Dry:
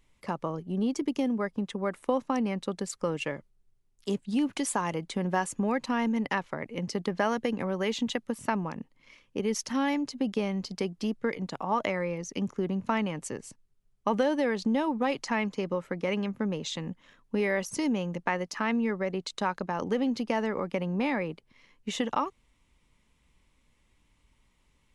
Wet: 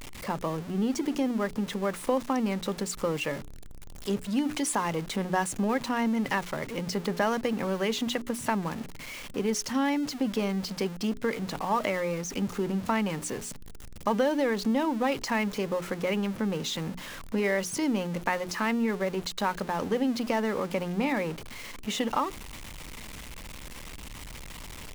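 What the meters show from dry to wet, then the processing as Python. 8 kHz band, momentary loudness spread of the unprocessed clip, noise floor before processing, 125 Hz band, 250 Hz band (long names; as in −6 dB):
+4.0 dB, 7 LU, −69 dBFS, +1.0 dB, +1.0 dB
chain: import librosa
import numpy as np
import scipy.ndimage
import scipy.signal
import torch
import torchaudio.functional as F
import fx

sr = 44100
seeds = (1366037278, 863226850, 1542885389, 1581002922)

y = x + 0.5 * 10.0 ** (-35.5 / 20.0) * np.sign(x)
y = fx.hum_notches(y, sr, base_hz=60, count=7)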